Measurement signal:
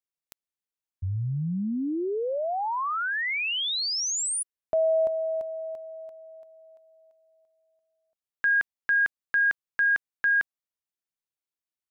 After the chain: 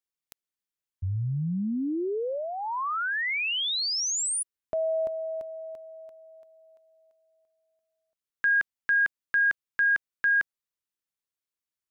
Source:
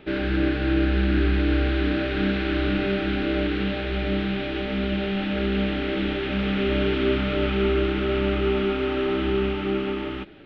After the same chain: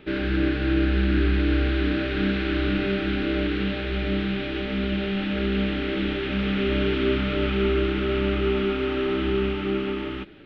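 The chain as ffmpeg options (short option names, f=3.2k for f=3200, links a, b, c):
-af "equalizer=f=720:w=2.2:g=-5.5"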